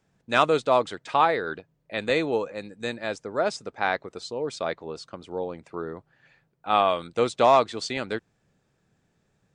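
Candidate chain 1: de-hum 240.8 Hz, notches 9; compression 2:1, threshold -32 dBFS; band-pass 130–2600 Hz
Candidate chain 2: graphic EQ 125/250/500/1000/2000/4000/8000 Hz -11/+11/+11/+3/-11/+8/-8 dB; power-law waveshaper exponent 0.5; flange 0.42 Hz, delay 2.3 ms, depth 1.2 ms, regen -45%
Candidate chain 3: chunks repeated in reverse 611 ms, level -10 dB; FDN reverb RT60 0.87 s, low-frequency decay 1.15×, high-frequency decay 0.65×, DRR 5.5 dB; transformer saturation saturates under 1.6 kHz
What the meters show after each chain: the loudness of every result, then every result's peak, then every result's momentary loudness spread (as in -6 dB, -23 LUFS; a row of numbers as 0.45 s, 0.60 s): -34.0 LUFS, -15.5 LUFS, -26.0 LUFS; -14.5 dBFS, -2.0 dBFS, -6.5 dBFS; 9 LU, 9 LU, 18 LU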